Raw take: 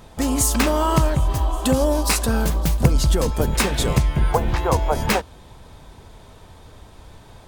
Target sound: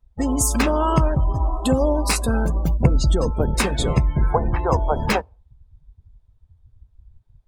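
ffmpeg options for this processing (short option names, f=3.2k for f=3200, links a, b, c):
-af "afftdn=nr=35:nf=-28"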